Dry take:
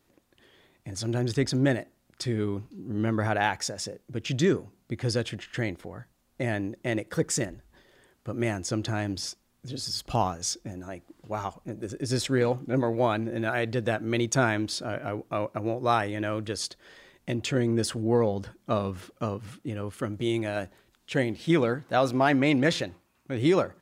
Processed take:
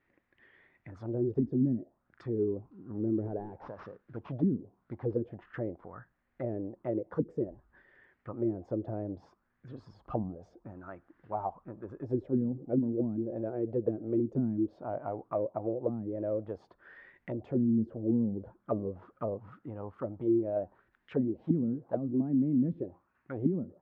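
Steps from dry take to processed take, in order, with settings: 3.02–5.14 CVSD 32 kbps; envelope low-pass 230–2000 Hz down, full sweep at -20.5 dBFS; gain -9 dB

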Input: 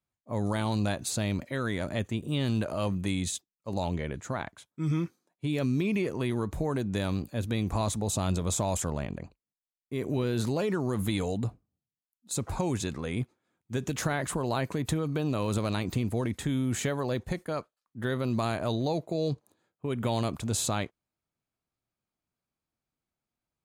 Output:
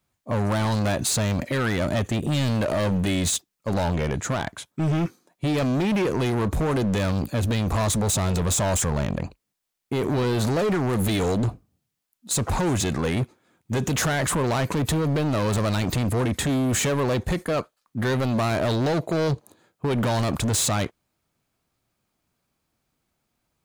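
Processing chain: in parallel at +0.5 dB: limiter -28 dBFS, peak gain reduction 11 dB; on the sum: hard clip -27.5 dBFS, distortion -8 dB; gain +7.5 dB

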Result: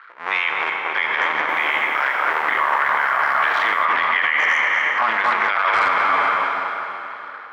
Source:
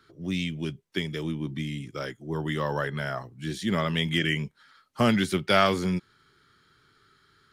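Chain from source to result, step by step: cycle switcher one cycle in 2, muted; Chebyshev band-pass 990–2100 Hz, order 2; AGC gain up to 6 dB; tape echo 0.236 s, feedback 66%, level -4 dB, low-pass 1700 Hz; Schroeder reverb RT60 2.9 s, combs from 32 ms, DRR 8 dB; maximiser +31 dB; 1.4–3.85 lo-fi delay 86 ms, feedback 35%, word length 6-bit, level -9 dB; gain -8 dB

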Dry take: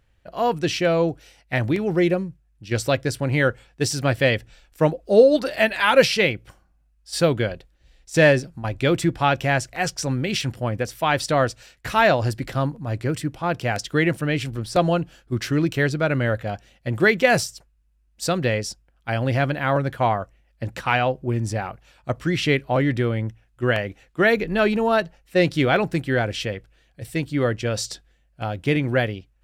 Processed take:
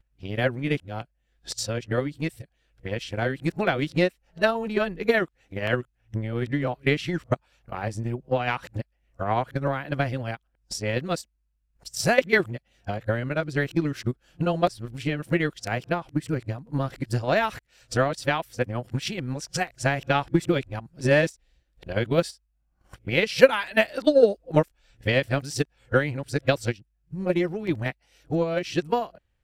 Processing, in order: whole clip reversed; transient shaper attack +11 dB, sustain -1 dB; gain -8.5 dB

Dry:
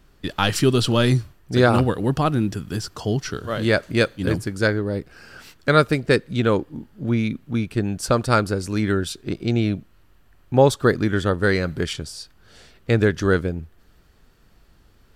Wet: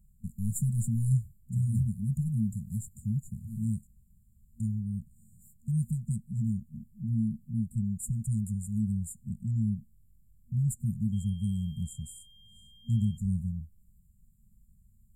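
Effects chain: 3.87–4.6 room tone; FFT band-reject 230–6900 Hz; 11.12–13.16 whine 3200 Hz -51 dBFS; gain -5.5 dB

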